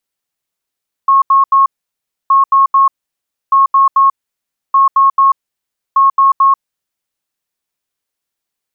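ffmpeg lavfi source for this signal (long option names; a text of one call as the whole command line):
ffmpeg -f lavfi -i "aevalsrc='0.562*sin(2*PI*1090*t)*clip(min(mod(mod(t,1.22),0.22),0.14-mod(mod(t,1.22),0.22))/0.005,0,1)*lt(mod(t,1.22),0.66)':duration=6.1:sample_rate=44100" out.wav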